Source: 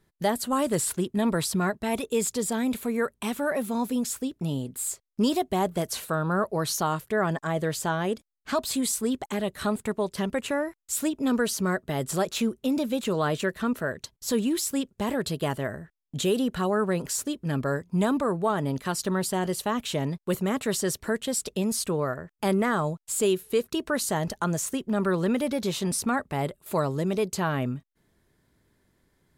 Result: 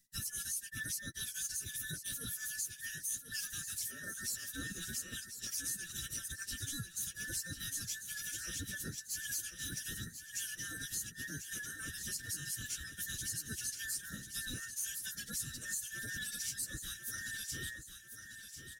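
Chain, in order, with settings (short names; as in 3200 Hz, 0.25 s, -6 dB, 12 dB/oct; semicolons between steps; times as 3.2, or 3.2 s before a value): band inversion scrambler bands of 2000 Hz; Chebyshev band-stop 120–6100 Hz, order 2; low shelf 130 Hz -9 dB; limiter -25.5 dBFS, peak gain reduction 9 dB; transient shaper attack -7 dB, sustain -1 dB; compressor 3:1, threshold -50 dBFS, peak gain reduction 12.5 dB; sample leveller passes 1; plain phase-vocoder stretch 0.64×; on a send: feedback echo 1.044 s, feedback 49%, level -9.5 dB; on the sum: gain +10.5 dB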